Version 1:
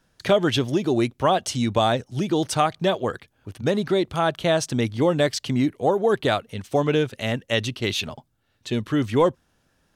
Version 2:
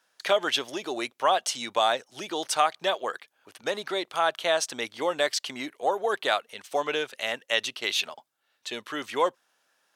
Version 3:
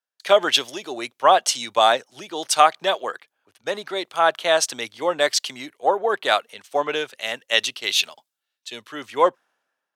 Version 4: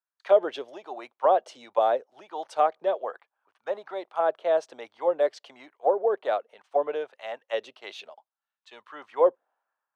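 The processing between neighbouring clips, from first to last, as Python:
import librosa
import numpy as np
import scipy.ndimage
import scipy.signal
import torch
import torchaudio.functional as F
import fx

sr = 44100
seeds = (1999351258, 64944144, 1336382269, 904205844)

y1 = scipy.signal.sosfilt(scipy.signal.butter(2, 700.0, 'highpass', fs=sr, output='sos'), x)
y2 = fx.band_widen(y1, sr, depth_pct=70)
y2 = y2 * librosa.db_to_amplitude(5.0)
y3 = fx.auto_wah(y2, sr, base_hz=490.0, top_hz=1100.0, q=2.1, full_db=-17.5, direction='down')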